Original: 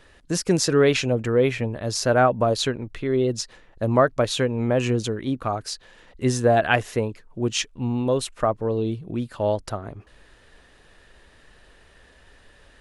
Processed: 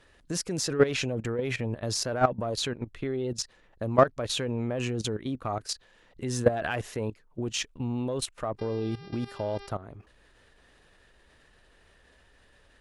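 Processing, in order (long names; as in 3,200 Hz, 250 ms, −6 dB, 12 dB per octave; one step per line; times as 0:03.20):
harmonic generator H 3 −34 dB, 5 −29 dB, 7 −44 dB, 8 −37 dB, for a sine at −4.5 dBFS
0:08.58–0:09.70: hum with harmonics 400 Hz, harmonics 14, −42 dBFS −4 dB per octave
output level in coarse steps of 15 dB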